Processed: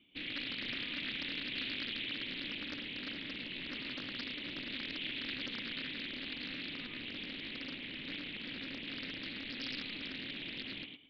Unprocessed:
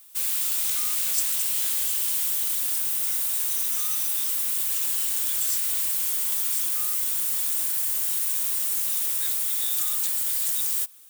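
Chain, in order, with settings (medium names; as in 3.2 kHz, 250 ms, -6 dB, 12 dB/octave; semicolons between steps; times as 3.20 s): cascade formant filter i; thinning echo 108 ms, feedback 25%, high-pass 170 Hz, level -4.5 dB; loudspeaker Doppler distortion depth 0.56 ms; trim +15.5 dB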